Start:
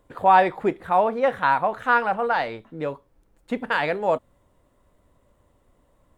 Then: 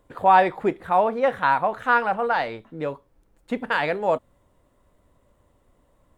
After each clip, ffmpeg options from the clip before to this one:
-af anull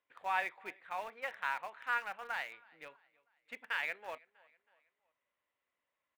-filter_complex "[0:a]bandpass=f=2.3k:t=q:w=2.3:csg=0,aecho=1:1:322|644|966:0.0708|0.0326|0.015,asplit=2[a][b];[b]aeval=exprs='val(0)*gte(abs(val(0)),0.02)':c=same,volume=-8dB[c];[a][c]amix=inputs=2:normalize=0,volume=-8.5dB"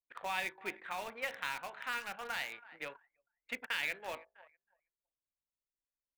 -filter_complex "[0:a]acrossover=split=350|3000[a][b][c];[b]acompressor=threshold=-50dB:ratio=5[d];[a][d][c]amix=inputs=3:normalize=0,bandreject=f=53.82:t=h:w=4,bandreject=f=107.64:t=h:w=4,bandreject=f=161.46:t=h:w=4,bandreject=f=215.28:t=h:w=4,bandreject=f=269.1:t=h:w=4,bandreject=f=322.92:t=h:w=4,bandreject=f=376.74:t=h:w=4,bandreject=f=430.56:t=h:w=4,bandreject=f=484.38:t=h:w=4,bandreject=f=538.2:t=h:w=4,bandreject=f=592.02:t=h:w=4,bandreject=f=645.84:t=h:w=4,bandreject=f=699.66:t=h:w=4,bandreject=f=753.48:t=h:w=4,bandreject=f=807.3:t=h:w=4,bandreject=f=861.12:t=h:w=4,bandreject=f=914.94:t=h:w=4,bandreject=f=968.76:t=h:w=4,bandreject=f=1.02258k:t=h:w=4,bandreject=f=1.0764k:t=h:w=4,bandreject=f=1.13022k:t=h:w=4,bandreject=f=1.18404k:t=h:w=4,bandreject=f=1.23786k:t=h:w=4,bandreject=f=1.29168k:t=h:w=4,bandreject=f=1.3455k:t=h:w=4,bandreject=f=1.39932k:t=h:w=4,bandreject=f=1.45314k:t=h:w=4,bandreject=f=1.50696k:t=h:w=4,bandreject=f=1.56078k:t=h:w=4,bandreject=f=1.6146k:t=h:w=4,bandreject=f=1.66842k:t=h:w=4,bandreject=f=1.72224k:t=h:w=4,anlmdn=0.00001,volume=10dB"

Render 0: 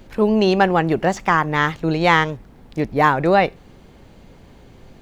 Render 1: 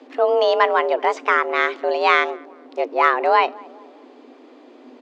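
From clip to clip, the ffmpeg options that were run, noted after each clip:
-filter_complex "[0:a]lowpass=4.5k,asplit=2[a][b];[b]adelay=213,lowpass=f=880:p=1,volume=-22dB,asplit=2[c][d];[d]adelay=213,lowpass=f=880:p=1,volume=0.54,asplit=2[e][f];[f]adelay=213,lowpass=f=880:p=1,volume=0.54,asplit=2[g][h];[h]adelay=213,lowpass=f=880:p=1,volume=0.54[i];[a][c][e][g][i]amix=inputs=5:normalize=0,afreqshift=240,volume=-1dB"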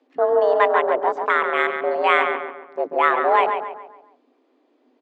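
-filter_complex "[0:a]afwtdn=0.0631,asplit=2[a][b];[b]adelay=139,lowpass=f=2.6k:p=1,volume=-6dB,asplit=2[c][d];[d]adelay=139,lowpass=f=2.6k:p=1,volume=0.43,asplit=2[e][f];[f]adelay=139,lowpass=f=2.6k:p=1,volume=0.43,asplit=2[g][h];[h]adelay=139,lowpass=f=2.6k:p=1,volume=0.43,asplit=2[i][j];[j]adelay=139,lowpass=f=2.6k:p=1,volume=0.43[k];[c][e][g][i][k]amix=inputs=5:normalize=0[l];[a][l]amix=inputs=2:normalize=0,volume=-1.5dB"

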